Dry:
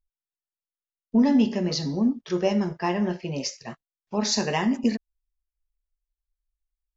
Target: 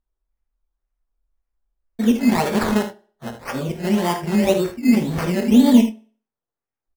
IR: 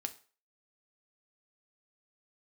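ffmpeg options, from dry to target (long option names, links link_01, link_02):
-filter_complex "[0:a]areverse,highshelf=frequency=6000:gain=-7,acrusher=samples=15:mix=1:aa=0.000001:lfo=1:lforange=9:lforate=1.9,asplit=2[link_01][link_02];[link_02]adelay=24,volume=-11dB[link_03];[link_01][link_03]amix=inputs=2:normalize=0,aecho=1:1:51|77:0.282|0.266,asplit=2[link_04][link_05];[1:a]atrim=start_sample=2205,asetrate=38367,aresample=44100,highshelf=frequency=2700:gain=-12[link_06];[link_05][link_06]afir=irnorm=-1:irlink=0,volume=2dB[link_07];[link_04][link_07]amix=inputs=2:normalize=0,volume=-1dB"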